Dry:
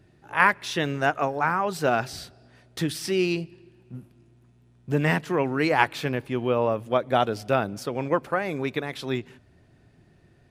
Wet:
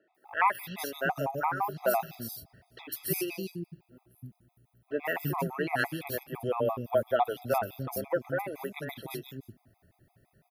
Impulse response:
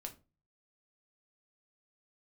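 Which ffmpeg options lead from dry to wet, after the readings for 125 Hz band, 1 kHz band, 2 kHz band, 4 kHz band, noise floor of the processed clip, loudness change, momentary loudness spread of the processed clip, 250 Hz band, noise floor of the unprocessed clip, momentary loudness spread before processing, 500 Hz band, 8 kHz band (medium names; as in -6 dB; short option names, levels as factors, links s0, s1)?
-8.5 dB, -5.5 dB, -8.0 dB, -10.0 dB, -74 dBFS, -6.5 dB, 15 LU, -10.0 dB, -59 dBFS, 13 LU, -5.5 dB, -3.0 dB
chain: -filter_complex "[0:a]aexciter=amount=9.9:drive=7.6:freq=11000,equalizer=f=730:w=1.7:g=5.5,acrossover=split=300|3400[s0][s1][s2];[s2]adelay=150[s3];[s0]adelay=290[s4];[s4][s1][s3]amix=inputs=3:normalize=0,afftfilt=real='re*gt(sin(2*PI*5.9*pts/sr)*(1-2*mod(floor(b*sr/1024/660),2)),0)':imag='im*gt(sin(2*PI*5.9*pts/sr)*(1-2*mod(floor(b*sr/1024/660),2)),0)':win_size=1024:overlap=0.75,volume=0.596"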